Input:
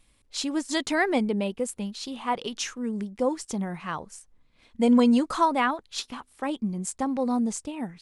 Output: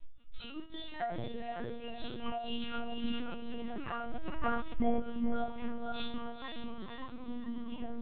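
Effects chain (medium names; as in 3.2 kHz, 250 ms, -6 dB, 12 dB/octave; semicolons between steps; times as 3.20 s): simulated room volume 200 m³, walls furnished, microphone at 3.2 m; compression 12:1, threshold -27 dBFS, peak gain reduction 23.5 dB; reverb removal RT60 0.72 s; chord resonator A#3 fifth, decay 0.5 s; echo that smears into a reverb 500 ms, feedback 45%, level -4 dB; LPC vocoder at 8 kHz pitch kept; 2.80–5.00 s: decay stretcher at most 26 dB/s; trim +11.5 dB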